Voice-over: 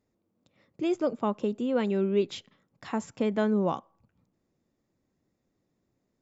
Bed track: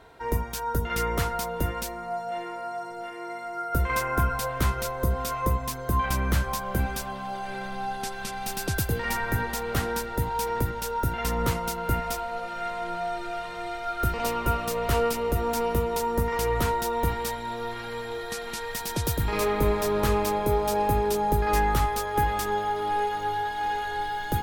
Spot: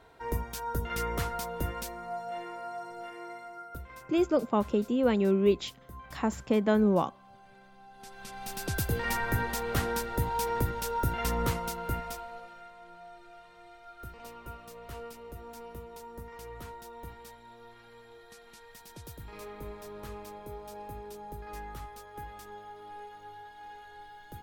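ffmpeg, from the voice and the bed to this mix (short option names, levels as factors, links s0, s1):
-filter_complex "[0:a]adelay=3300,volume=1.19[s0];[1:a]volume=5.01,afade=t=out:st=3.17:d=0.69:silence=0.149624,afade=t=in:st=7.92:d=1.07:silence=0.105925,afade=t=out:st=11.25:d=1.43:silence=0.149624[s1];[s0][s1]amix=inputs=2:normalize=0"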